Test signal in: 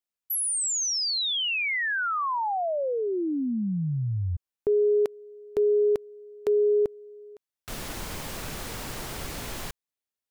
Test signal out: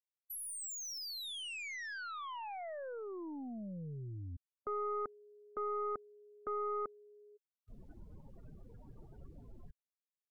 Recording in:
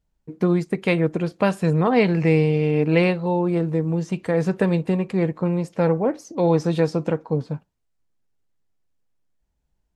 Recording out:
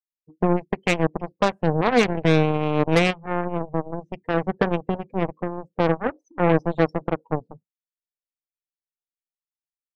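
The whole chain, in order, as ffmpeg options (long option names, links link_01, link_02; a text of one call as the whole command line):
ffmpeg -i in.wav -af "afftdn=noise_reduction=35:noise_floor=-30,aeval=exprs='0.531*(cos(1*acos(clip(val(0)/0.531,-1,1)))-cos(1*PI/2))+0.00841*(cos(4*acos(clip(val(0)/0.531,-1,1)))-cos(4*PI/2))+0.0944*(cos(7*acos(clip(val(0)/0.531,-1,1)))-cos(7*PI/2))':channel_layout=same" out.wav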